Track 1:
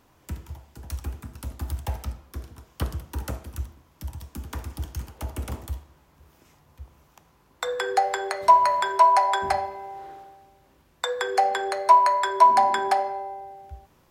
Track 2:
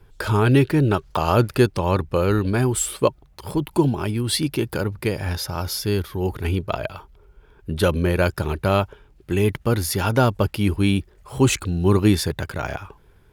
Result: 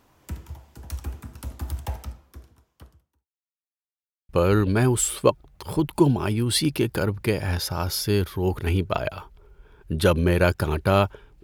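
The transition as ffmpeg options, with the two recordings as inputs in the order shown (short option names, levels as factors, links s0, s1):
-filter_complex "[0:a]apad=whole_dur=11.43,atrim=end=11.43,asplit=2[s0][s1];[s0]atrim=end=3.3,asetpts=PTS-STARTPTS,afade=t=out:st=1.82:d=1.48:c=qua[s2];[s1]atrim=start=3.3:end=4.29,asetpts=PTS-STARTPTS,volume=0[s3];[1:a]atrim=start=2.07:end=9.21,asetpts=PTS-STARTPTS,afade=t=in:d=0.004:c=hsin[s4];[s2][s3][s4]concat=n=3:v=0:a=1"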